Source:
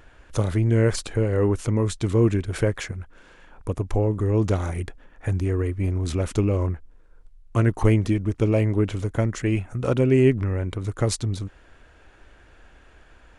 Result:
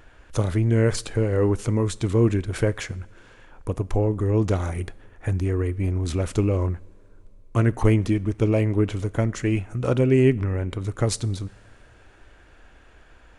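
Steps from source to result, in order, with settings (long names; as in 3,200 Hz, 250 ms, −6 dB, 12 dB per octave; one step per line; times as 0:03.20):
coupled-rooms reverb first 0.5 s, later 3.6 s, from −18 dB, DRR 18 dB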